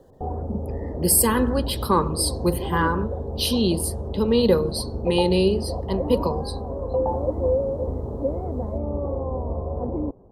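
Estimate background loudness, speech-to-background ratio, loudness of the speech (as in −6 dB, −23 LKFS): −28.5 LKFS, 5.5 dB, −23.0 LKFS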